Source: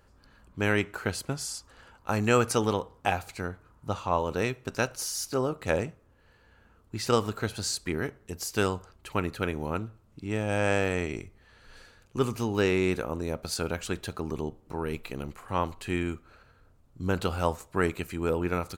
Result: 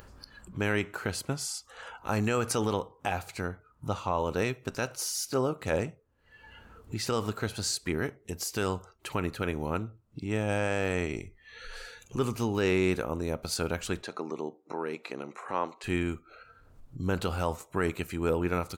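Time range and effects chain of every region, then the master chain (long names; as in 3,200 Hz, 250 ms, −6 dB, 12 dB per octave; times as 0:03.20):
0:14.02–0:15.84: band-pass filter 290–6,200 Hz + parametric band 3,100 Hz −7 dB 0.36 octaves
whole clip: noise reduction from a noise print of the clip's start 17 dB; upward compression, threshold −32 dBFS; brickwall limiter −16 dBFS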